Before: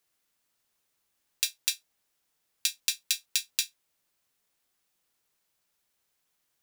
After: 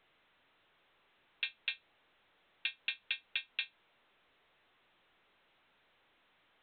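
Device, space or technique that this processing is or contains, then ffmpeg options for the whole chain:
telephone: -af "highpass=330,lowpass=3100,asoftclip=type=tanh:threshold=-20dB,volume=2.5dB" -ar 8000 -c:a pcm_alaw

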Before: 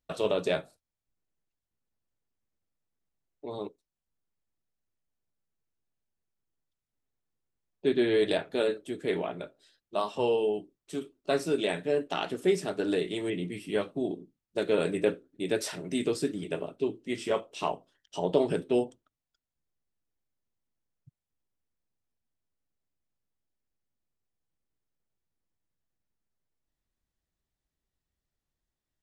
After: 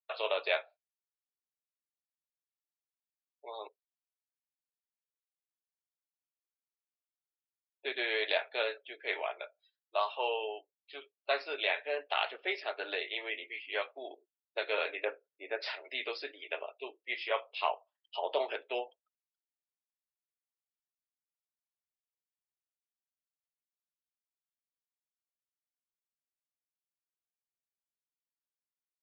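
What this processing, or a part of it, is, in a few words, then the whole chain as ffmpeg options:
musical greeting card: -filter_complex "[0:a]aresample=11025,aresample=44100,highpass=frequency=610:width=0.5412,highpass=frequency=610:width=1.3066,equalizer=frequency=2300:width_type=o:width=0.52:gain=7,asplit=3[link_01][link_02][link_03];[link_01]afade=type=out:start_time=15.04:duration=0.02[link_04];[link_02]lowpass=1600,afade=type=in:start_time=15.04:duration=0.02,afade=type=out:start_time=15.61:duration=0.02[link_05];[link_03]afade=type=in:start_time=15.61:duration=0.02[link_06];[link_04][link_05][link_06]amix=inputs=3:normalize=0,afftdn=noise_reduction=25:noise_floor=-53"

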